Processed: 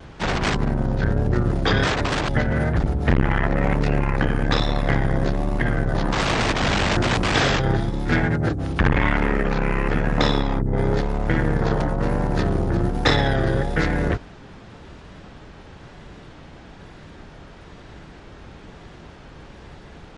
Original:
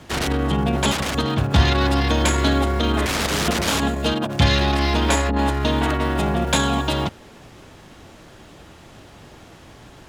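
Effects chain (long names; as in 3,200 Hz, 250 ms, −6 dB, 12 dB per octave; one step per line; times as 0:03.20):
tape wow and flutter 76 cents
wrong playback speed 15 ips tape played at 7.5 ips
saturating transformer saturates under 300 Hz
level +2.5 dB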